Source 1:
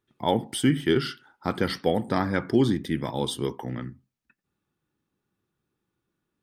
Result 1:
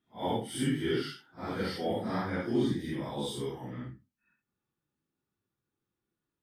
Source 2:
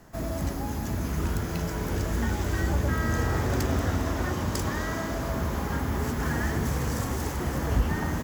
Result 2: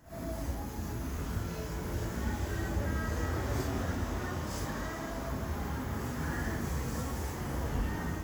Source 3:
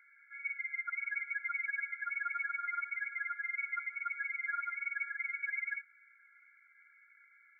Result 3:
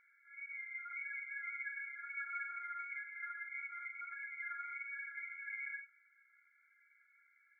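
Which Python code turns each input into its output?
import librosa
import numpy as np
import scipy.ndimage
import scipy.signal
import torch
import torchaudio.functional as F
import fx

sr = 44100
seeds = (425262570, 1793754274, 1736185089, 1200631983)

y = fx.phase_scramble(x, sr, seeds[0], window_ms=200)
y = F.gain(torch.from_numpy(y), -7.0).numpy()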